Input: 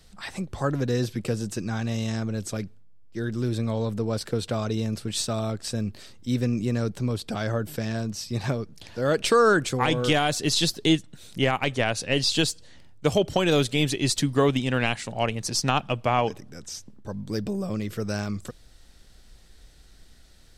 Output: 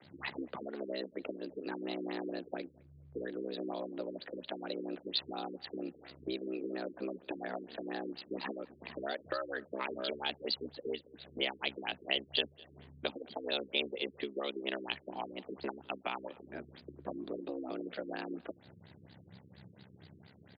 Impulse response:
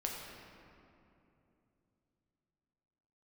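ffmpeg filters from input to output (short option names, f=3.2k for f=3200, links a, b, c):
-filter_complex "[0:a]lowshelf=f=65:g=-11,acrossover=split=190[a][b];[a]acompressor=threshold=-49dB:ratio=6[c];[c][b]amix=inputs=2:normalize=0,afreqshift=110,acrossover=split=160|3000[d][e][f];[e]acompressor=threshold=-38dB:ratio=10[g];[d][g][f]amix=inputs=3:normalize=0,aeval=exprs='val(0)*sin(2*PI*33*n/s)':c=same,asplit=2[h][i];[i]adelay=210,lowpass=f=4k:p=1,volume=-24dB,asplit=2[j][k];[k]adelay=210,lowpass=f=4k:p=1,volume=0.37[l];[j][l]amix=inputs=2:normalize=0[m];[h][m]amix=inputs=2:normalize=0,afftfilt=real='re*lt(b*sr/1024,450*pow(5000/450,0.5+0.5*sin(2*PI*4.3*pts/sr)))':imag='im*lt(b*sr/1024,450*pow(5000/450,0.5+0.5*sin(2*PI*4.3*pts/sr)))':win_size=1024:overlap=0.75,volume=4dB"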